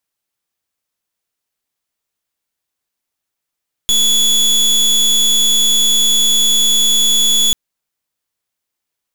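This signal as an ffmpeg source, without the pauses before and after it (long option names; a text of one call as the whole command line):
ffmpeg -f lavfi -i "aevalsrc='0.251*(2*lt(mod(3410*t,1),0.28)-1)':duration=3.64:sample_rate=44100" out.wav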